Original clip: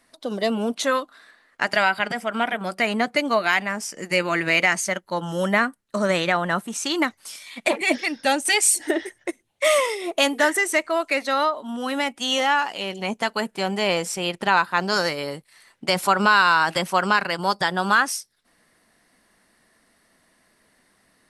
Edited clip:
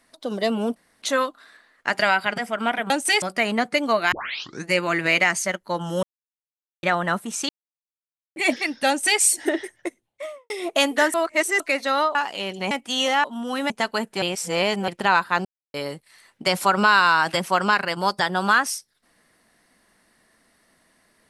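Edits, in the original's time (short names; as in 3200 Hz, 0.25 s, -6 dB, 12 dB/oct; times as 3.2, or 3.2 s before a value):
0.76 insert room tone 0.26 s
3.54 tape start 0.56 s
5.45–6.25 mute
6.91–7.78 mute
8.3–8.62 copy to 2.64
9.14–9.92 studio fade out
10.56–11.02 reverse
11.57–12.03 swap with 12.56–13.12
13.64–14.3 reverse
14.87–15.16 mute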